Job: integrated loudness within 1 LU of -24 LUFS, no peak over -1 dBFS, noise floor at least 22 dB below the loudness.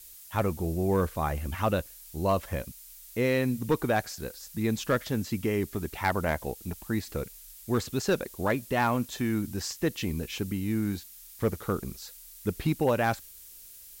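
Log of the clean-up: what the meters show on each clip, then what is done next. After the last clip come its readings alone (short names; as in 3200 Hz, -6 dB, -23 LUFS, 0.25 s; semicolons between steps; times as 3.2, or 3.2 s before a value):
clipped 0.2%; flat tops at -17.0 dBFS; noise floor -49 dBFS; noise floor target -52 dBFS; loudness -30.0 LUFS; peak -17.0 dBFS; loudness target -24.0 LUFS
-> clip repair -17 dBFS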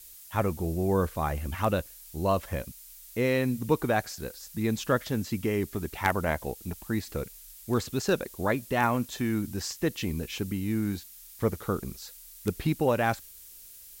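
clipped 0.0%; noise floor -49 dBFS; noise floor target -52 dBFS
-> denoiser 6 dB, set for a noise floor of -49 dBFS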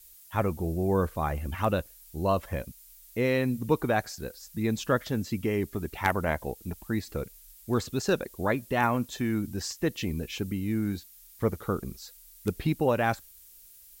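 noise floor -53 dBFS; loudness -30.0 LUFS; peak -8.0 dBFS; loudness target -24.0 LUFS
-> gain +6 dB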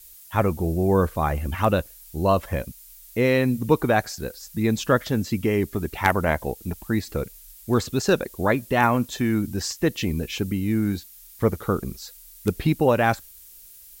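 loudness -24.0 LUFS; peak -2.0 dBFS; noise floor -47 dBFS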